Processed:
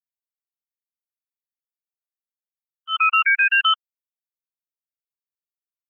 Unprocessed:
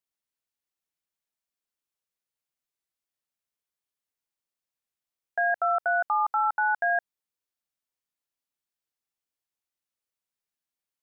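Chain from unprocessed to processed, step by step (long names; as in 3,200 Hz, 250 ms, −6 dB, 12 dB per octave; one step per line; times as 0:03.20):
spectral dynamics exaggerated over time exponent 3
volume swells 244 ms
change of speed 1.87×
level +8.5 dB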